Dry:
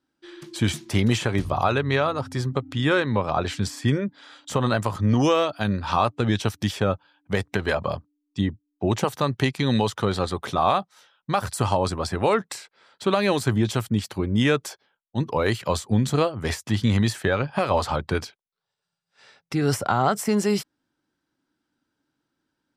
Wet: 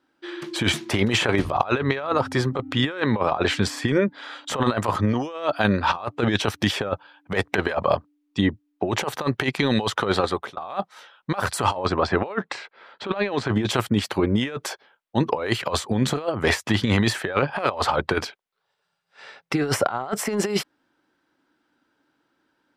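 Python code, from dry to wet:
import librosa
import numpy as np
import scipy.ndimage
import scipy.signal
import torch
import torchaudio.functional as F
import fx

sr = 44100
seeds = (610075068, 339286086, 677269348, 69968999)

y = fx.air_absorb(x, sr, metres=140.0, at=(11.85, 13.56))
y = fx.edit(y, sr, fx.fade_out_span(start_s=9.95, length_s=0.62, curve='qsin'), tone=tone)
y = fx.bass_treble(y, sr, bass_db=-11, treble_db=-10)
y = fx.over_compress(y, sr, threshold_db=-28.0, ratio=-0.5)
y = y * librosa.db_to_amplitude(7.0)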